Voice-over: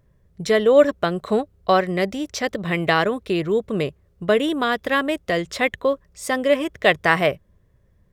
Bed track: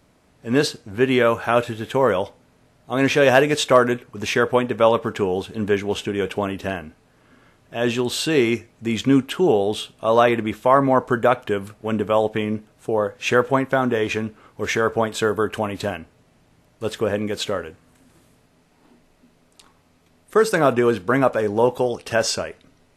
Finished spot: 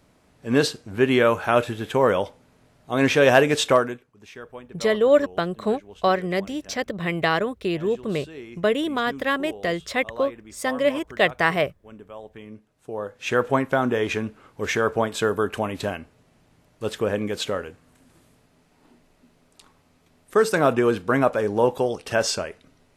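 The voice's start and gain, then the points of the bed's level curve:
4.35 s, -3.0 dB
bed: 3.7 s -1 dB
4.16 s -21.5 dB
12.21 s -21.5 dB
13.51 s -2 dB

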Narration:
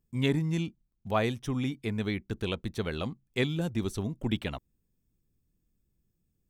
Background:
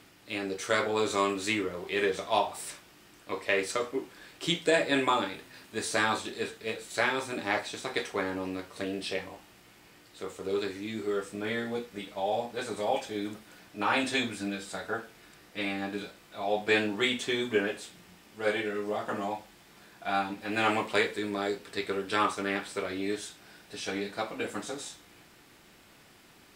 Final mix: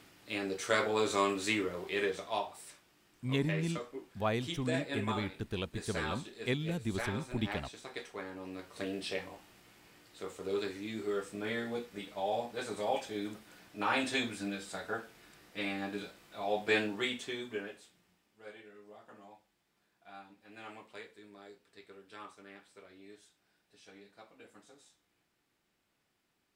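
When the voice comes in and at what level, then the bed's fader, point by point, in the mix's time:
3.10 s, -5.0 dB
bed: 1.81 s -2.5 dB
2.65 s -11.5 dB
8.35 s -11.5 dB
8.8 s -4 dB
16.77 s -4 dB
18.54 s -22 dB

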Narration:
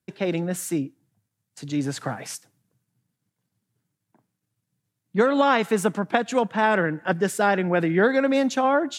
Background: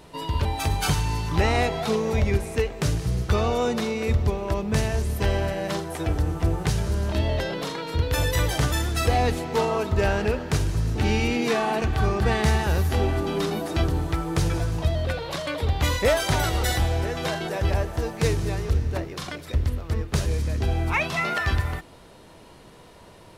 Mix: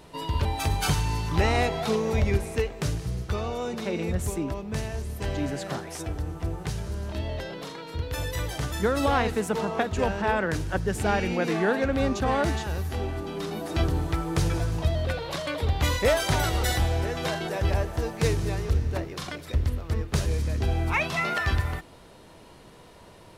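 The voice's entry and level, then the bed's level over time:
3.65 s, -5.5 dB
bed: 2.45 s -1.5 dB
3.42 s -7.5 dB
13.4 s -7.5 dB
13.81 s -1.5 dB

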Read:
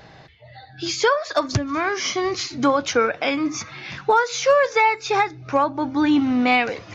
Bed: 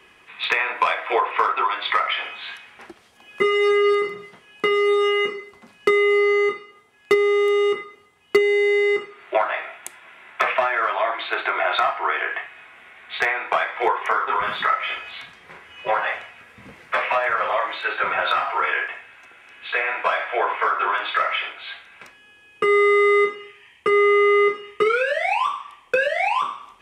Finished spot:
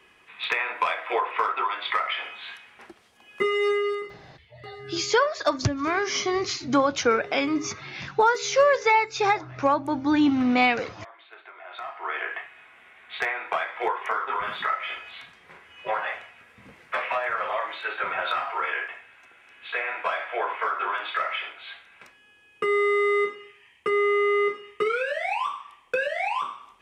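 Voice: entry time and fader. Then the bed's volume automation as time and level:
4.10 s, -2.5 dB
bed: 3.69 s -5 dB
4.59 s -23.5 dB
11.6 s -23.5 dB
12.17 s -6 dB

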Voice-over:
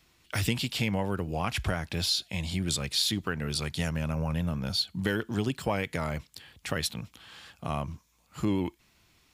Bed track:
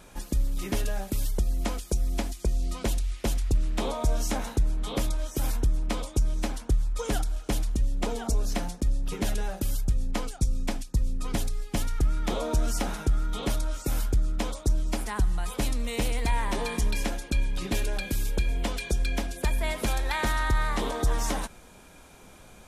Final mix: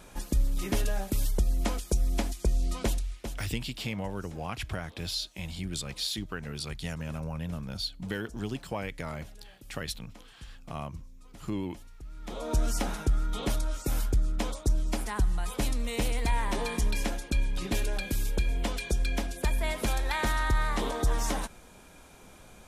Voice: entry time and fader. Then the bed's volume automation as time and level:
3.05 s, -5.5 dB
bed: 2.84 s 0 dB
3.81 s -22 dB
12.01 s -22 dB
12.55 s -1.5 dB

